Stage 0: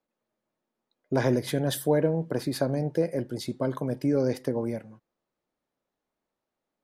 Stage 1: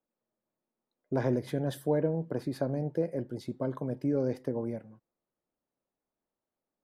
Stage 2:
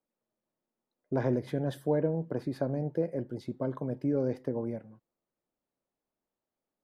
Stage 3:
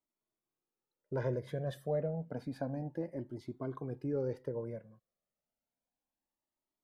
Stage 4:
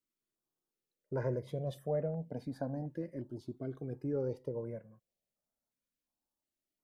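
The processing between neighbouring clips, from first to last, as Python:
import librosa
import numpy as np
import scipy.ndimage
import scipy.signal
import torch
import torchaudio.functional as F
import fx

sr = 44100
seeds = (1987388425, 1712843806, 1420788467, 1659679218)

y1 = fx.high_shelf(x, sr, hz=2000.0, db=-11.0)
y1 = y1 * librosa.db_to_amplitude(-4.0)
y2 = fx.high_shelf(y1, sr, hz=4700.0, db=-8.0)
y3 = fx.comb_cascade(y2, sr, direction='rising', hz=0.3)
y3 = y3 * librosa.db_to_amplitude(-1.0)
y4 = fx.filter_held_notch(y3, sr, hz=2.8, low_hz=790.0, high_hz=4300.0)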